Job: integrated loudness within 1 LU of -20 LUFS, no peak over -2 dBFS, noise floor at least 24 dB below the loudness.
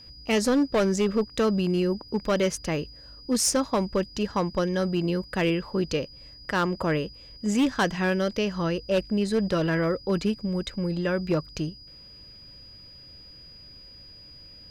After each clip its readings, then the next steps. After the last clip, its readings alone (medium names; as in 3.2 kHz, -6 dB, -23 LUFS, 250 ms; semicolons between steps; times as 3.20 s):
clipped samples 1.3%; clipping level -17.5 dBFS; steady tone 4.9 kHz; tone level -46 dBFS; loudness -26.0 LUFS; peak level -17.5 dBFS; loudness target -20.0 LUFS
-> clip repair -17.5 dBFS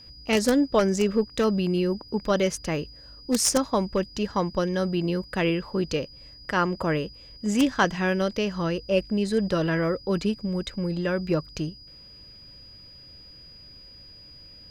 clipped samples 0.0%; steady tone 4.9 kHz; tone level -46 dBFS
-> band-stop 4.9 kHz, Q 30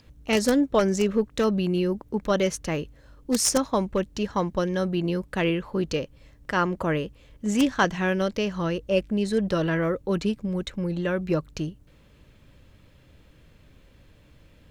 steady tone not found; loudness -25.5 LUFS; peak level -8.0 dBFS; loudness target -20.0 LUFS
-> trim +5.5 dB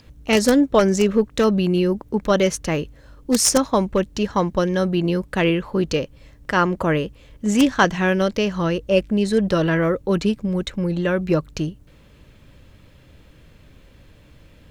loudness -20.0 LUFS; peak level -2.5 dBFS; noise floor -50 dBFS